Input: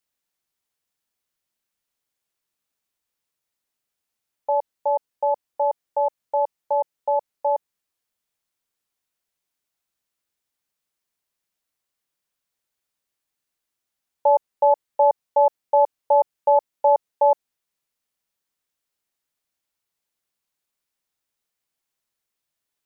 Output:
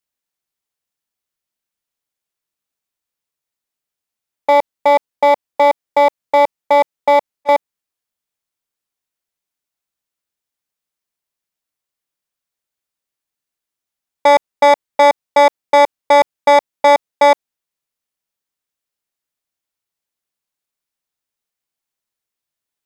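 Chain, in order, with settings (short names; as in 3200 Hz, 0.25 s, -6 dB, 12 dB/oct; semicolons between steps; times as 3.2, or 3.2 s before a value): 7.09–7.49 auto swell 0.311 s; sample leveller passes 3; gain +4 dB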